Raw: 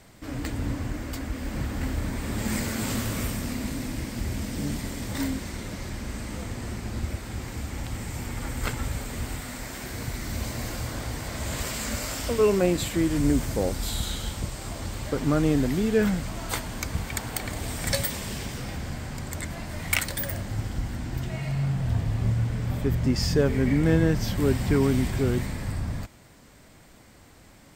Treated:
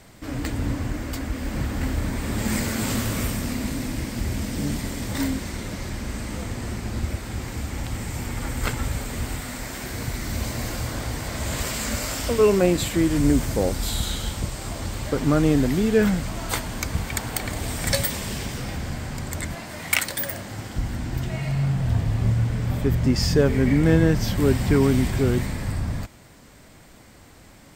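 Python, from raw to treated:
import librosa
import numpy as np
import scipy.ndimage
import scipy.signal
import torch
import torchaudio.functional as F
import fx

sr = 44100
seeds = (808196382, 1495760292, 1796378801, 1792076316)

y = fx.highpass(x, sr, hz=270.0, slope=6, at=(19.55, 20.76))
y = F.gain(torch.from_numpy(y), 3.5).numpy()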